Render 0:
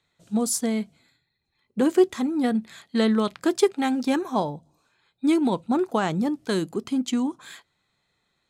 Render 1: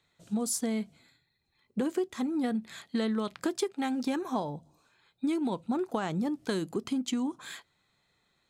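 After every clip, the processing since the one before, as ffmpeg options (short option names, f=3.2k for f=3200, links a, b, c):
-af "acompressor=threshold=-28dB:ratio=5"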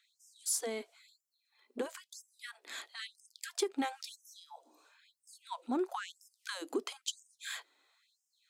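-filter_complex "[0:a]acrossover=split=150[a][b];[b]acompressor=threshold=-32dB:ratio=2.5[c];[a][c]amix=inputs=2:normalize=0,afftfilt=real='re*gte(b*sr/1024,220*pow(5100/220,0.5+0.5*sin(2*PI*1*pts/sr)))':imag='im*gte(b*sr/1024,220*pow(5100/220,0.5+0.5*sin(2*PI*1*pts/sr)))':win_size=1024:overlap=0.75,volume=2dB"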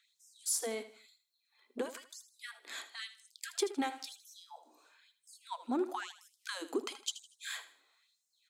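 -af "aecho=1:1:79|158|237:0.211|0.0697|0.023"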